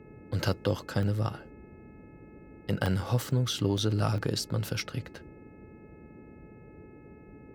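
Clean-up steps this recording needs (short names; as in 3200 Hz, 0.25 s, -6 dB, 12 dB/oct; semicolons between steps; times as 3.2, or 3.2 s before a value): de-hum 428.7 Hz, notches 6; interpolate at 1.03/2.86/3.31/3.78/4.18/4.8, 1.1 ms; noise print and reduce 25 dB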